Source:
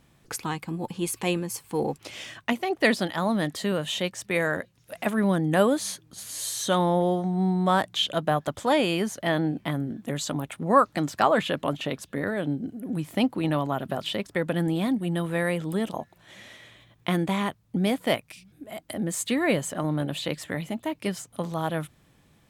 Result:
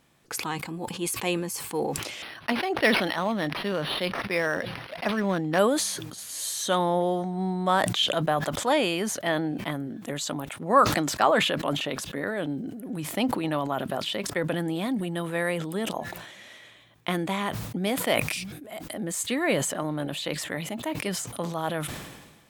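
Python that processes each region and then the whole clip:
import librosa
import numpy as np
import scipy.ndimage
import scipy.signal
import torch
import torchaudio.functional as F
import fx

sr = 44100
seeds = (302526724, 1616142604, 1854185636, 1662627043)

y = fx.chain(x, sr, fx.high_shelf(hz=4300.0, db=9.0),
    fx.resample_linear(factor=6), at=(2.22, 5.59))
y = fx.low_shelf(y, sr, hz=170.0, db=-11.5)
y = fx.sustainer(y, sr, db_per_s=45.0)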